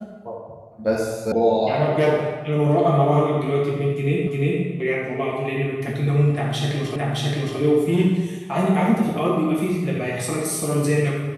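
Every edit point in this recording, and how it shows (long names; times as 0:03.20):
0:01.32: cut off before it has died away
0:04.27: the same again, the last 0.35 s
0:06.96: the same again, the last 0.62 s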